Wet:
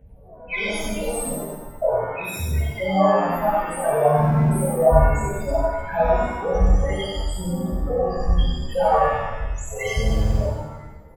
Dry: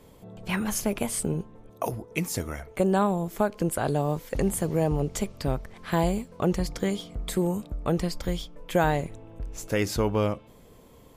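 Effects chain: 7.63–8.04 s: CVSD coder 32 kbps; tone controls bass -4 dB, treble +12 dB; phaser 1.2 Hz, delay 4.2 ms, feedback 78%; peak limiter -13 dBFS, peak gain reduction 9.5 dB; loudest bins only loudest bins 8; treble shelf 4.8 kHz -7.5 dB; static phaser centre 1.2 kHz, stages 6; delay 94 ms -3.5 dB; buffer glitch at 4.14/10.03 s, samples 2048, times 7; pitch-shifted reverb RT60 1 s, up +7 st, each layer -8 dB, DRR -8.5 dB; trim -1.5 dB

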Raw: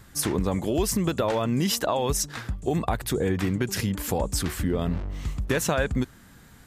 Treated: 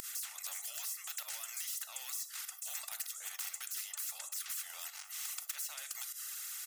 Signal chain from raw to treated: octave divider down 2 oct, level +1 dB; differentiator; compression 5:1, threshold -41 dBFS, peak gain reduction 17.5 dB; peak limiter -36.5 dBFS, peak gain reduction 10 dB; saturation -39 dBFS, distortion -20 dB; reverb removal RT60 0.83 s; volume shaper 98 bpm, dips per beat 1, -24 dB, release 111 ms; Bessel high-pass 1.7 kHz, order 8; resonant high shelf 5.3 kHz +8 dB, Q 3; comb 1.5 ms, depth 99%; simulated room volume 170 m³, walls furnished, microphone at 0.36 m; spectrum-flattening compressor 4:1; trim -1.5 dB

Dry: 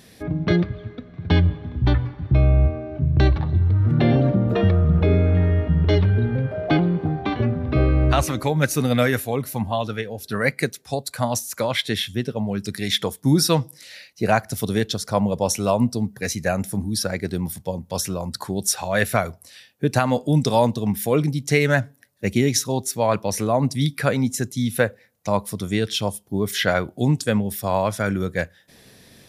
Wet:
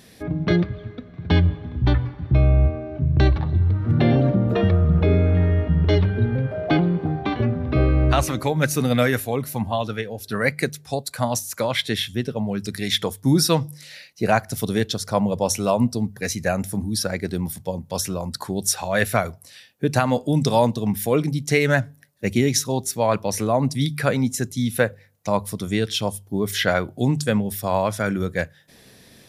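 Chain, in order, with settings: de-hum 49.46 Hz, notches 3

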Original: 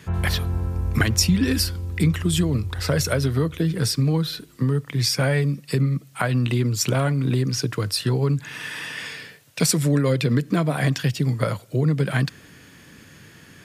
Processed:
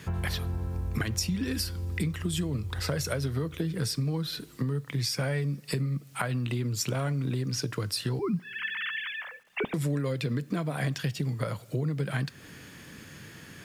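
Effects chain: 8.19–9.74 s: formants replaced by sine waves; compression 3:1, threshold -30 dBFS, peak gain reduction 12 dB; bit crusher 11-bit; on a send: reverberation, pre-delay 3 ms, DRR 18 dB

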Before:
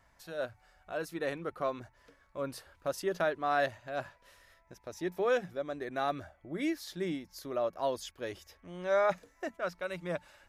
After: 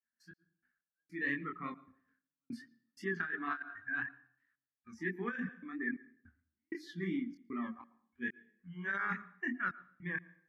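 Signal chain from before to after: expander -57 dBFS; in parallel at -5 dB: saturation -34 dBFS, distortion -7 dB; on the sum: hum notches 50/100/150/200/250/300/350/400 Hz; spectral noise reduction 22 dB; two resonant band-passes 620 Hz, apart 2.8 oct; trance gate "xx..x..xxxx." 96 bpm -60 dB; chorus 2.9 Hz, delay 20 ms, depth 6.9 ms; on a send at -20 dB: reverberation RT60 0.55 s, pre-delay 105 ms; on the sum: compressor with a negative ratio -47 dBFS, ratio -0.5; trim +13 dB

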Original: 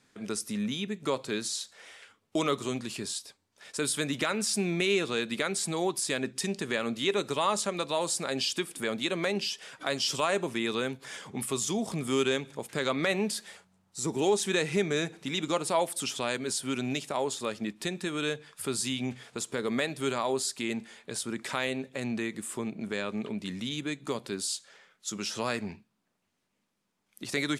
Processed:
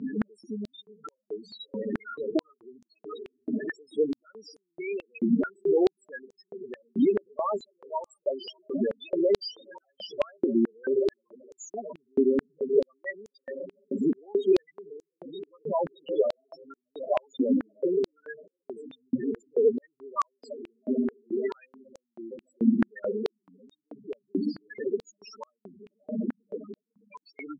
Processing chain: jump at every zero crossing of -31 dBFS; treble shelf 11 kHz -6.5 dB; on a send: echo that smears into a reverb 639 ms, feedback 67%, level -6.5 dB; on the sum: compression 3:1, threshold -28 dBFS, peak gain reduction 7.5 dB; loudest bins only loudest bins 4; distance through air 190 m; step-sequenced high-pass 4.6 Hz 260–6600 Hz; trim +5 dB

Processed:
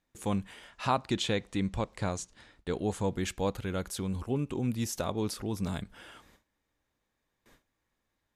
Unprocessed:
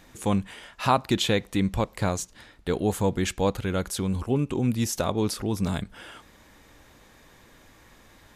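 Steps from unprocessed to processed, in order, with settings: gate with hold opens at -41 dBFS; 0.70–3.10 s: low-pass 9.7 kHz 24 dB/octave; trim -6.5 dB

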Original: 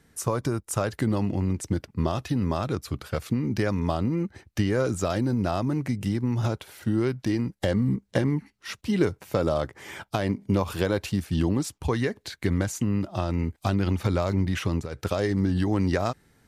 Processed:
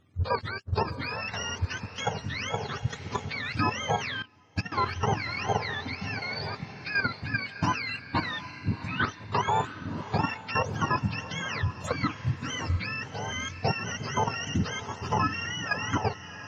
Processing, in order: spectrum inverted on a logarithmic axis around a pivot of 730 Hz; low-pass 1.7 kHz 6 dB/octave; peaking EQ 350 Hz -9 dB 0.2 oct; level held to a coarse grid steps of 10 dB; echo that smears into a reverb 701 ms, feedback 45%, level -12 dB; 4.22–4.72 s: upward expansion 2.5:1, over -43 dBFS; trim +6 dB

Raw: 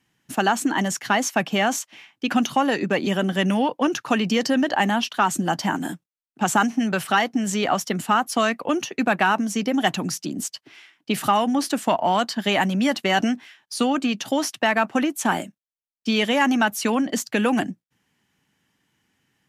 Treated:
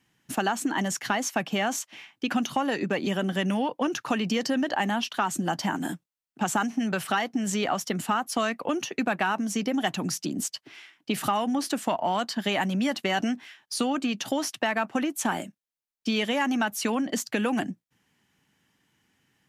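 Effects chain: compression 2:1, threshold -27 dBFS, peak gain reduction 7.5 dB

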